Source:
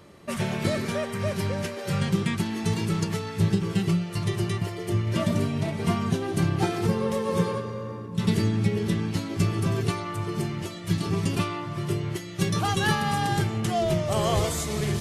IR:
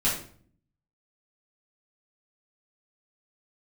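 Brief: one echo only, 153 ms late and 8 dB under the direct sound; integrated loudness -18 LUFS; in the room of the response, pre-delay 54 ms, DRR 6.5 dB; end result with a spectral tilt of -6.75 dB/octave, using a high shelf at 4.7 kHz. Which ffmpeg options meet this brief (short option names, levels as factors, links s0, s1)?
-filter_complex "[0:a]highshelf=f=4700:g=-8,aecho=1:1:153:0.398,asplit=2[s0][s1];[1:a]atrim=start_sample=2205,adelay=54[s2];[s1][s2]afir=irnorm=-1:irlink=0,volume=0.133[s3];[s0][s3]amix=inputs=2:normalize=0,volume=2.11"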